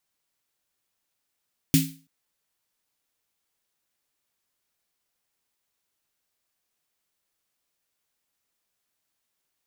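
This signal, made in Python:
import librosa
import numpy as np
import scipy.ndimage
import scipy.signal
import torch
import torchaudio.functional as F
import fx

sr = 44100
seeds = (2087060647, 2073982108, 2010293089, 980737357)

y = fx.drum_snare(sr, seeds[0], length_s=0.33, hz=160.0, second_hz=270.0, noise_db=-5.5, noise_from_hz=2100.0, decay_s=0.36, noise_decay_s=0.35)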